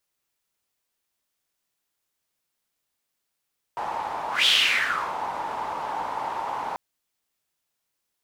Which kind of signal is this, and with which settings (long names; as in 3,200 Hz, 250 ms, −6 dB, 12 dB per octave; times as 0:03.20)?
pass-by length 2.99 s, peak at 0:00.69, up 0.16 s, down 0.76 s, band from 890 Hz, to 3,300 Hz, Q 5.4, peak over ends 11.5 dB